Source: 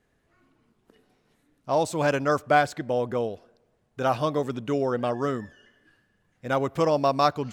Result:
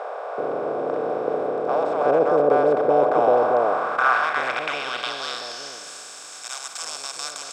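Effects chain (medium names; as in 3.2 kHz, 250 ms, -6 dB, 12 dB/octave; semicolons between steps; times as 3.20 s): spectral levelling over time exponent 0.2; band-pass sweep 480 Hz -> 7.1 kHz, 2.84–5.92 s; bands offset in time highs, lows 380 ms, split 640 Hz; trim +5.5 dB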